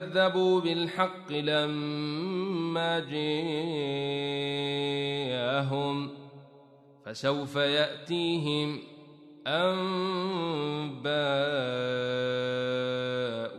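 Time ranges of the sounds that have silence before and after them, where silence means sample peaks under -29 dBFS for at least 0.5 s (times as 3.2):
7.08–8.76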